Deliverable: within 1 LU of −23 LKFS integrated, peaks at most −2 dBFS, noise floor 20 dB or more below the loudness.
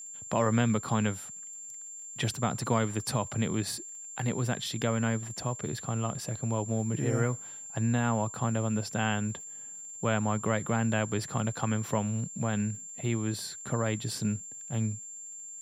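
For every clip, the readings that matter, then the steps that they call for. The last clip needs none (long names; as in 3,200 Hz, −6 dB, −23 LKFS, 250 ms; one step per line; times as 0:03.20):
crackle rate 50 per second; interfering tone 7,300 Hz; level of the tone −41 dBFS; integrated loudness −31.5 LKFS; sample peak −12.0 dBFS; target loudness −23.0 LKFS
→ click removal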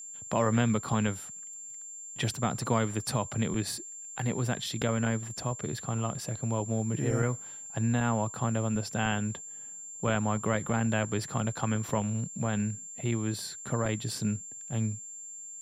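crackle rate 0.38 per second; interfering tone 7,300 Hz; level of the tone −41 dBFS
→ notch filter 7,300 Hz, Q 30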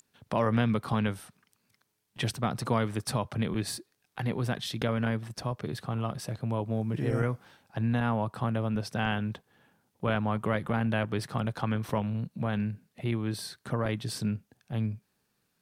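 interfering tone none found; integrated loudness −31.5 LKFS; sample peak −12.0 dBFS; target loudness −23.0 LKFS
→ level +8.5 dB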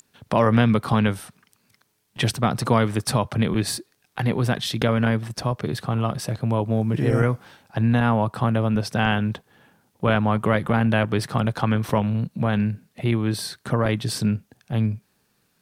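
integrated loudness −23.0 LKFS; sample peak −3.5 dBFS; background noise floor −68 dBFS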